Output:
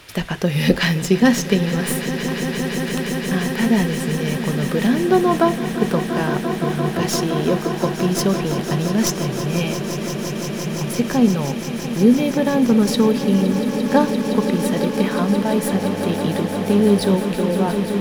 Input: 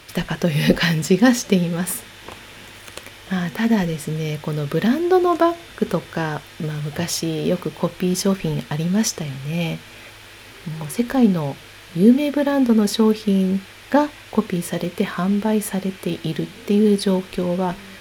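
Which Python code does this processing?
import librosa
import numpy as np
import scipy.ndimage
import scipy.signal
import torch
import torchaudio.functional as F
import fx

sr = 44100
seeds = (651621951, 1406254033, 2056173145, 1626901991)

y = fx.tracing_dist(x, sr, depth_ms=0.032)
y = fx.dmg_buzz(y, sr, base_hz=100.0, harmonics=8, level_db=-32.0, tilt_db=-2, odd_only=False, at=(15.71, 17.14), fade=0.02)
y = fx.echo_swell(y, sr, ms=172, loudest=8, wet_db=-13.5)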